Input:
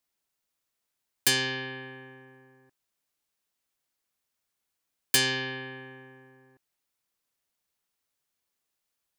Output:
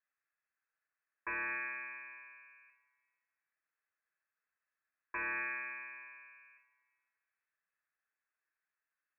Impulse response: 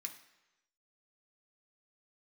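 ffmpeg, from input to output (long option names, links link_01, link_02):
-filter_complex "[0:a]equalizer=frequency=990:width_type=o:width=0.64:gain=10,alimiter=limit=-14dB:level=0:latency=1:release=251,adynamicsmooth=sensitivity=1:basefreq=2000[link_01];[1:a]atrim=start_sample=2205,asetrate=26019,aresample=44100[link_02];[link_01][link_02]afir=irnorm=-1:irlink=0,lowpass=frequency=2300:width_type=q:width=0.5098,lowpass=frequency=2300:width_type=q:width=0.6013,lowpass=frequency=2300:width_type=q:width=0.9,lowpass=frequency=2300:width_type=q:width=2.563,afreqshift=-2700,volume=-2.5dB"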